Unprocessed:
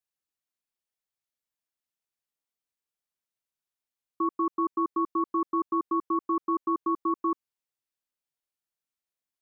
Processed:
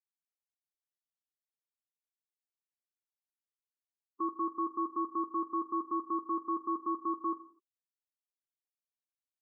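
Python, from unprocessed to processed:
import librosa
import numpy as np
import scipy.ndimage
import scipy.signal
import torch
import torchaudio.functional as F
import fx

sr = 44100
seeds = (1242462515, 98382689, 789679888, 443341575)

y = fx.bin_expand(x, sr, power=3.0)
y = fx.rev_gated(y, sr, seeds[0], gate_ms=280, shape='falling', drr_db=11.5)
y = fx.dynamic_eq(y, sr, hz=1200.0, q=1.2, threshold_db=-43.0, ratio=4.0, max_db=4)
y = F.gain(torch.from_numpy(y), -6.5).numpy()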